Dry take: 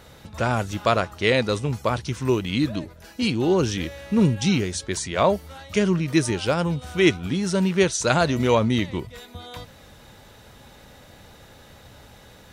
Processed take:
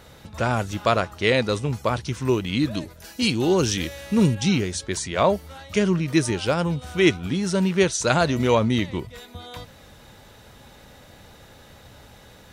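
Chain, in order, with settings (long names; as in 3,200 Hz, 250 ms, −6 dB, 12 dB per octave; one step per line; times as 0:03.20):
0:02.71–0:04.35: high-shelf EQ 3,800 Hz +9 dB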